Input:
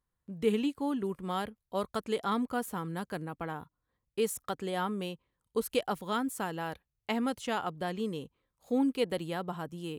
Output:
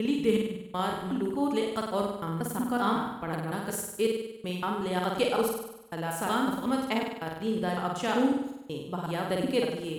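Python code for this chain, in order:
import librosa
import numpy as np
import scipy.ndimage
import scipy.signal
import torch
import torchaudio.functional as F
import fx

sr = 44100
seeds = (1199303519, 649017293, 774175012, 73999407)

y = fx.block_reorder(x, sr, ms=185.0, group=4)
y = fx.room_flutter(y, sr, wall_m=8.5, rt60_s=0.88)
y = y * 10.0 ** (2.0 / 20.0)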